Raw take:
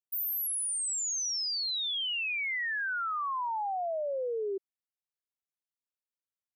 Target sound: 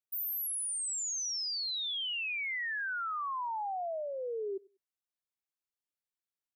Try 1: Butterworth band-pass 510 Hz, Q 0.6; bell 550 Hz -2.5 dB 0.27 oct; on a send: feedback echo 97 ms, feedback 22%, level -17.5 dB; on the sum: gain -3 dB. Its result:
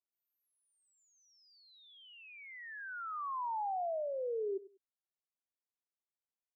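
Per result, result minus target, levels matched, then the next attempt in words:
500 Hz band +5.5 dB; echo-to-direct +7 dB
bell 550 Hz -2.5 dB 0.27 oct; on a send: feedback echo 97 ms, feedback 22%, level -17.5 dB; on the sum: gain -3 dB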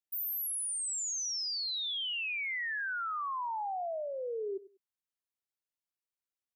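echo-to-direct +7 dB
bell 550 Hz -2.5 dB 0.27 oct; on a send: feedback echo 97 ms, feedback 22%, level -24.5 dB; on the sum: gain -3 dB

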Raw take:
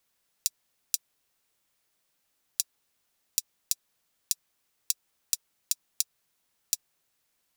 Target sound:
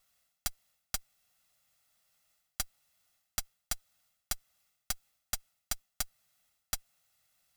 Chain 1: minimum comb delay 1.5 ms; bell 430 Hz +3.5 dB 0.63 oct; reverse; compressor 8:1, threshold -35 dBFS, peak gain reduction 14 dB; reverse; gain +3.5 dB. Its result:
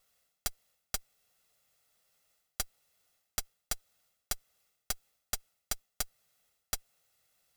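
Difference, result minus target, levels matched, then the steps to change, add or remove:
500 Hz band +4.5 dB
change: bell 430 Hz -7.5 dB 0.63 oct

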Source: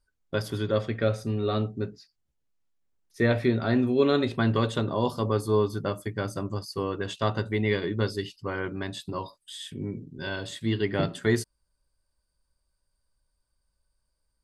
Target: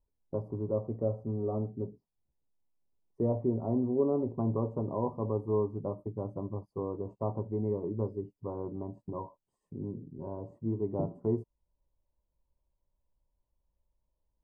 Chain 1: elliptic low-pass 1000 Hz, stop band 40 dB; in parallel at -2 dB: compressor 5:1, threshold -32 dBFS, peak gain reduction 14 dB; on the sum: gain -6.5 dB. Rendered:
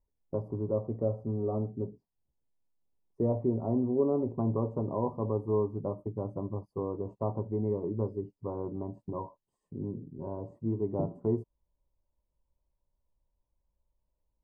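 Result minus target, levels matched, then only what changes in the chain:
compressor: peak gain reduction -6 dB
change: compressor 5:1, threshold -39.5 dBFS, peak gain reduction 20 dB

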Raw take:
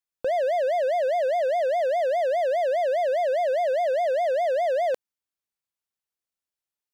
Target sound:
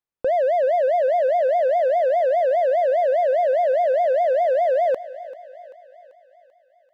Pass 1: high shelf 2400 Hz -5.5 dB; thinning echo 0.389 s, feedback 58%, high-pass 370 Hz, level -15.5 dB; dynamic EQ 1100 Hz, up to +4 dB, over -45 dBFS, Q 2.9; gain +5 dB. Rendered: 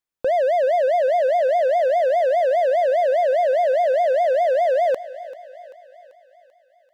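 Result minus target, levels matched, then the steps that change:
4000 Hz band +5.5 dB
change: high shelf 2400 Hz -14.5 dB

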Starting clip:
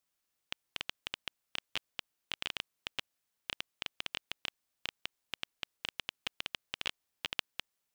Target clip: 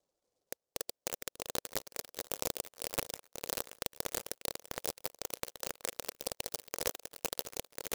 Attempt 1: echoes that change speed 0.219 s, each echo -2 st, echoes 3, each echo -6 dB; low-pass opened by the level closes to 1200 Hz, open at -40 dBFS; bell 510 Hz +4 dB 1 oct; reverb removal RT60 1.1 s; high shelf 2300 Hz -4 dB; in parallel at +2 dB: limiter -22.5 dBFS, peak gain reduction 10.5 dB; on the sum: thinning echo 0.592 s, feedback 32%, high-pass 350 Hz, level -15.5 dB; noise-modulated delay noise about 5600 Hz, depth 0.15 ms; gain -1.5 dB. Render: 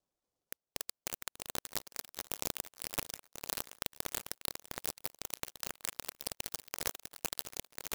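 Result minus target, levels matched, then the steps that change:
500 Hz band -6.0 dB
change: bell 510 Hz +14.5 dB 1 oct

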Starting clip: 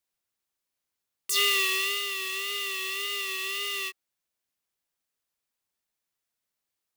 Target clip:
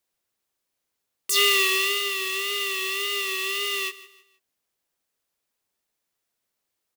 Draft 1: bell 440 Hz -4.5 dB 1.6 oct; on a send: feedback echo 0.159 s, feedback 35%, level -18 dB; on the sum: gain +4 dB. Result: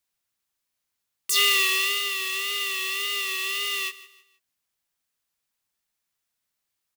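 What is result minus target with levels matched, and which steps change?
500 Hz band -8.0 dB
change: bell 440 Hz +4 dB 1.6 oct

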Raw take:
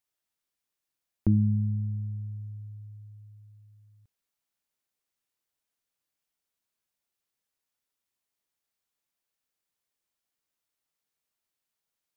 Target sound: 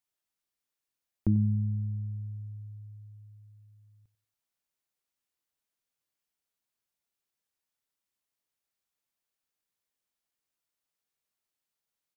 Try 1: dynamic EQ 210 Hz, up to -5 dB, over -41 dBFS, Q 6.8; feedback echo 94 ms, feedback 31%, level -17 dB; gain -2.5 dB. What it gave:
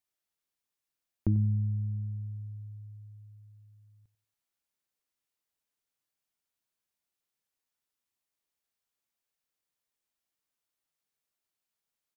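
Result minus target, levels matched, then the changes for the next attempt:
250 Hz band -3.5 dB
change: dynamic EQ 77 Hz, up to -5 dB, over -41 dBFS, Q 6.8

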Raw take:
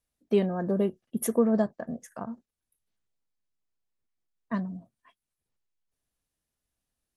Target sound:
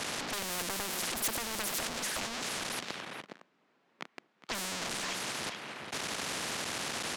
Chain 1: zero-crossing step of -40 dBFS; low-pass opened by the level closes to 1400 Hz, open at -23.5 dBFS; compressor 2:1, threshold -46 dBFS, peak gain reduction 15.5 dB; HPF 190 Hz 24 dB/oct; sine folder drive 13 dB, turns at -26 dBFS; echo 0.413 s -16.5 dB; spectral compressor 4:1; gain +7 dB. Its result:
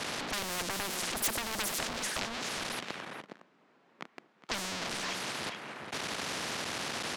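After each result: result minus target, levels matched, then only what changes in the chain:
zero-crossing step: distortion -6 dB; compressor: peak gain reduction -3.5 dB
change: zero-crossing step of -33.5 dBFS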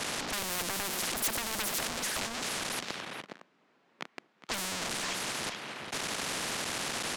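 compressor: peak gain reduction -3 dB
change: compressor 2:1, threshold -52.5 dBFS, peak gain reduction 19 dB

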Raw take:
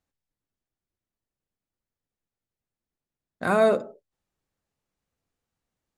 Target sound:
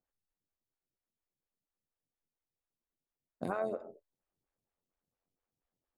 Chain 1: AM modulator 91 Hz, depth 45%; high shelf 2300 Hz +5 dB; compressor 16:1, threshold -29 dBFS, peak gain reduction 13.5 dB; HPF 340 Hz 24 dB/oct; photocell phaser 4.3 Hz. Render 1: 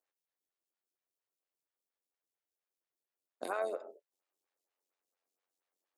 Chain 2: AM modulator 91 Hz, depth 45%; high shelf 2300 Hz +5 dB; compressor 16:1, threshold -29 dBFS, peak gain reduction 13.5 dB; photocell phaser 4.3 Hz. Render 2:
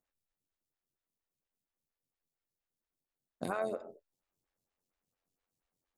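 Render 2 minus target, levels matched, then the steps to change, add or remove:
4000 Hz band +7.5 dB
change: high shelf 2300 Hz -6.5 dB

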